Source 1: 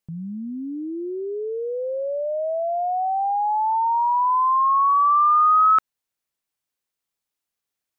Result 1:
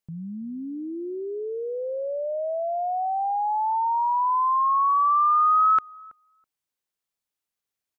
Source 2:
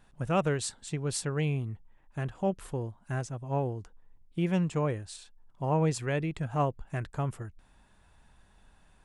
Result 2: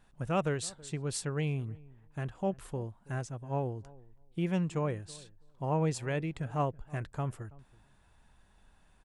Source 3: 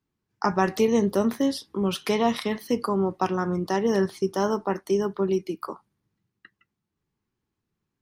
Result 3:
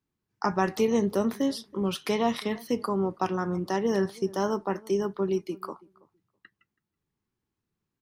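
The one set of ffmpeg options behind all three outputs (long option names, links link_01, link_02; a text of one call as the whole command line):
ffmpeg -i in.wav -filter_complex "[0:a]asplit=2[link_01][link_02];[link_02]adelay=327,lowpass=frequency=980:poles=1,volume=-21.5dB,asplit=2[link_03][link_04];[link_04]adelay=327,lowpass=frequency=980:poles=1,volume=0.16[link_05];[link_01][link_03][link_05]amix=inputs=3:normalize=0,volume=-3dB" out.wav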